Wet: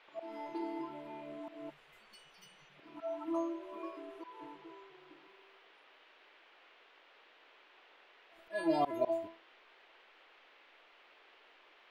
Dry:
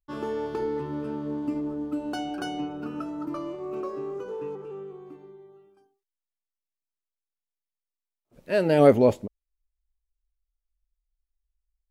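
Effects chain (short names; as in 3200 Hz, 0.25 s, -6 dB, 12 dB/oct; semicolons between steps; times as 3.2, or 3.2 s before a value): bin magnitudes rounded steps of 30 dB; band shelf 850 Hz +13 dB 1 oct; metallic resonator 330 Hz, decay 0.33 s, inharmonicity 0.002; spectral delete 1.7–2.79, 230–1900 Hz; low shelf 91 Hz -6 dB; notches 60/120/180/240 Hz; auto swell 0.177 s; band noise 340–3100 Hz -69 dBFS; gain +6 dB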